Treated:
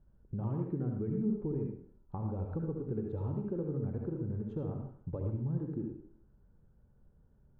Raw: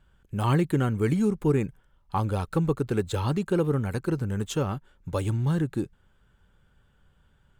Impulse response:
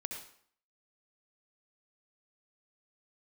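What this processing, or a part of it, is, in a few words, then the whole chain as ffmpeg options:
television next door: -filter_complex "[0:a]acompressor=threshold=-32dB:ratio=4,lowpass=550[link_01];[1:a]atrim=start_sample=2205[link_02];[link_01][link_02]afir=irnorm=-1:irlink=0"

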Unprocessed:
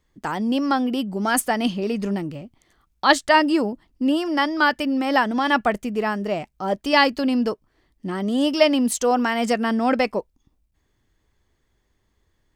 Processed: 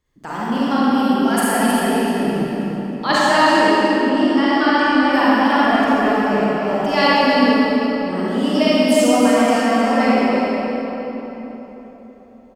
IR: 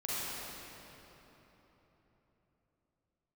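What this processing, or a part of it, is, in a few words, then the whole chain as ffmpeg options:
cave: -filter_complex "[0:a]aecho=1:1:315:0.398[link_01];[1:a]atrim=start_sample=2205[link_02];[link_01][link_02]afir=irnorm=-1:irlink=0,asettb=1/sr,asplit=3[link_03][link_04][link_05];[link_03]atrim=end=4.094[link_06];[link_04]atrim=start=4.09:end=5.13,asetpts=PTS-STARTPTS,afade=type=in:duration=0.004:curve=qsin,afade=type=out:start_time=1.036:duration=0.004:curve=qsin,lowpass=frequency=8300:width=0.5412,lowpass=frequency=8300:width=1.3066[link_07];[link_05]atrim=start=5.126[link_08];[link_06][link_07]acrossfade=duration=0.004:curve1=hsin:curve2=qsin[link_09];[link_09][link_08]acrossfade=duration=0.004:curve1=qsin:curve2=hsin,volume=-1dB"

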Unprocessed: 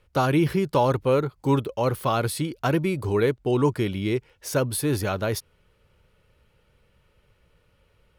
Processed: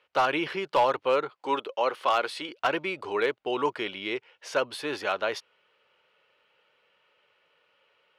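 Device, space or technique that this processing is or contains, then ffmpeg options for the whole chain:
megaphone: -filter_complex "[0:a]asettb=1/sr,asplit=3[link_01][link_02][link_03];[link_01]atrim=end=1.354[link_04];[link_02]atrim=start=1.35:end=2.49,asetpts=PTS-STARTPTS,afade=type=in:duration=0.004:curve=qsin,afade=type=out:start_time=1.136:duration=0.004:curve=qsin,highpass=220[link_05];[link_03]atrim=start=2.486[link_06];[link_04][link_05]acrossfade=duration=0.004:curve1=hsin:curve2=qsin[link_07];[link_07][link_06]acrossfade=duration=0.004:curve1=qsin:curve2=hsin,highpass=620,lowpass=3800,equalizer=frequency=2900:width_type=o:width=0.34:gain=4.5,asoftclip=type=hard:threshold=-17dB,volume=2dB"

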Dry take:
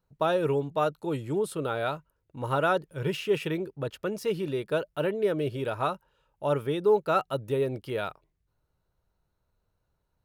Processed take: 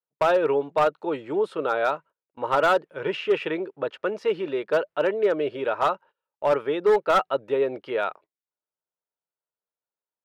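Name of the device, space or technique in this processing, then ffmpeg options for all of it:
walkie-talkie: -af "highpass=420,lowpass=2500,asoftclip=type=hard:threshold=-21.5dB,agate=range=-23dB:threshold=-53dB:ratio=16:detection=peak,volume=7.5dB"

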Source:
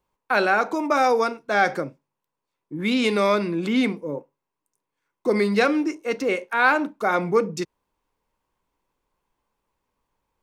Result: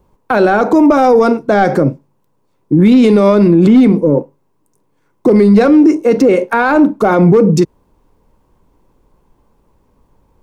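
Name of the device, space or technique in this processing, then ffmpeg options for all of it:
mastering chain: -af "equalizer=frequency=2400:width_type=o:width=1.5:gain=-3.5,acompressor=threshold=-22dB:ratio=2.5,asoftclip=type=tanh:threshold=-15.5dB,tiltshelf=frequency=670:gain=7.5,asoftclip=type=hard:threshold=-15dB,alimiter=level_in=20.5dB:limit=-1dB:release=50:level=0:latency=1,volume=-1dB"

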